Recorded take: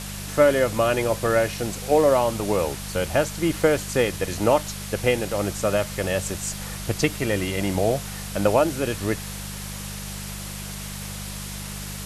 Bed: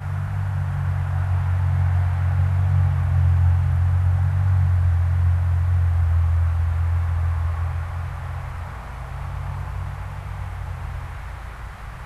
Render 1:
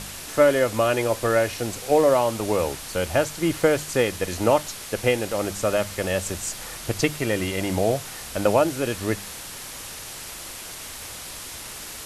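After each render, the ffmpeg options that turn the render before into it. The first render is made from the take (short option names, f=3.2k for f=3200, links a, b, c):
-af "bandreject=f=50:t=h:w=4,bandreject=f=100:t=h:w=4,bandreject=f=150:t=h:w=4,bandreject=f=200:t=h:w=4"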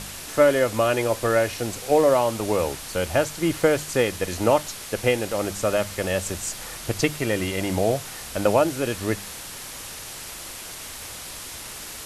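-af anull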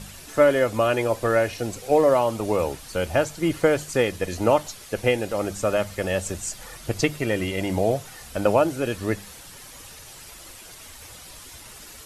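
-af "afftdn=nr=9:nf=-37"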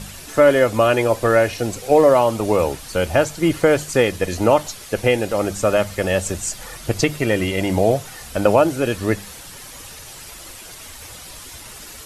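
-af "volume=5.5dB,alimiter=limit=-3dB:level=0:latency=1"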